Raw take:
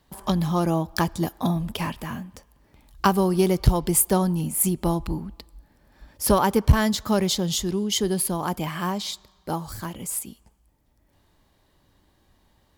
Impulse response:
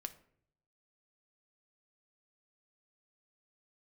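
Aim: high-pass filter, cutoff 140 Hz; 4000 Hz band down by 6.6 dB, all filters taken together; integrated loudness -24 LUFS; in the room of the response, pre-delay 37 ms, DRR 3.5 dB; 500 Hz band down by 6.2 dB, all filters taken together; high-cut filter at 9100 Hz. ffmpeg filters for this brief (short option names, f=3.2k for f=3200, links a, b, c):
-filter_complex "[0:a]highpass=140,lowpass=9.1k,equalizer=f=500:t=o:g=-9,equalizer=f=4k:t=o:g=-8.5,asplit=2[a][b];[1:a]atrim=start_sample=2205,adelay=37[c];[b][c]afir=irnorm=-1:irlink=0,volume=-0.5dB[d];[a][d]amix=inputs=2:normalize=0,volume=2dB"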